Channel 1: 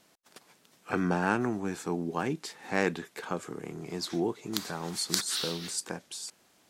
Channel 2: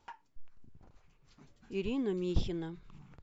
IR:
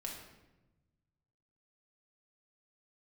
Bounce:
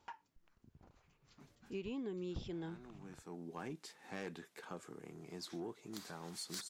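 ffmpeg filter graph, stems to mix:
-filter_complex "[0:a]asoftclip=type=tanh:threshold=0.0891,adelay=1400,volume=0.251[s0];[1:a]highpass=f=78:p=1,volume=0.841,asplit=2[s1][s2];[s2]apad=whole_len=356893[s3];[s0][s3]sidechaincompress=threshold=0.00178:ratio=4:attack=5.1:release=647[s4];[s4][s1]amix=inputs=2:normalize=0,acompressor=threshold=0.0112:ratio=10"

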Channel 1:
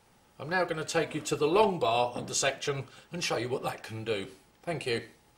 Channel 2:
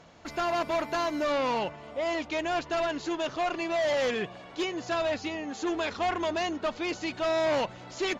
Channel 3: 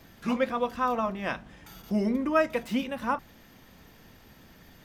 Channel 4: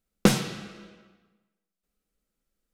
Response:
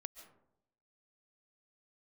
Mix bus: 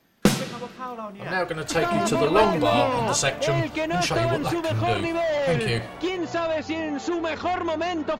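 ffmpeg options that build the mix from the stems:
-filter_complex "[0:a]asubboost=boost=5:cutoff=150,adelay=800,volume=0.794[s0];[1:a]highshelf=f=3600:g=-8,acompressor=threshold=0.0251:ratio=6,adelay=1450,volume=1.19[s1];[2:a]highpass=150,volume=0.376[s2];[3:a]volume=1.06[s3];[s0][s1][s2][s3]amix=inputs=4:normalize=0,dynaudnorm=f=270:g=7:m=2.37"

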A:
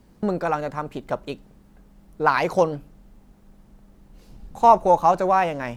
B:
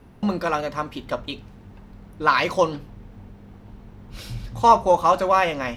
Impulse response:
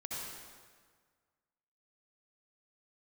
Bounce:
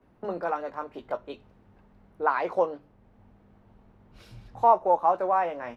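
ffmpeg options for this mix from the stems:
-filter_complex "[0:a]acrossover=split=310 2300:gain=0.0708 1 0.178[s0][s1][s2];[s0][s1][s2]amix=inputs=3:normalize=0,volume=0.631,asplit=2[s3][s4];[1:a]lowshelf=f=460:g=-6,adelay=16,volume=0.355[s5];[s4]apad=whole_len=255091[s6];[s5][s6]sidechaincompress=threshold=0.0282:ratio=3:attack=24:release=623[s7];[s3][s7]amix=inputs=2:normalize=0,highshelf=f=3000:g=-11"

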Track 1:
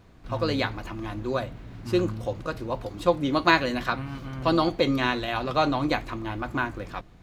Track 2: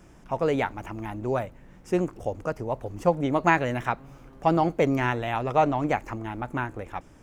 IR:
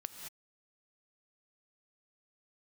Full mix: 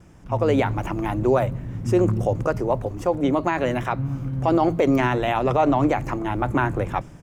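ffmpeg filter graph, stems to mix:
-filter_complex "[0:a]bandpass=f=140:t=q:w=1.2:csg=0,volume=1.41,asplit=2[s0][s1];[s1]volume=0.398[s2];[1:a]volume=-1,adelay=3.1,volume=1[s3];[2:a]atrim=start_sample=2205[s4];[s2][s4]afir=irnorm=-1:irlink=0[s5];[s0][s3][s5]amix=inputs=3:normalize=0,dynaudnorm=f=200:g=5:m=2.99,alimiter=limit=0.316:level=0:latency=1:release=51"

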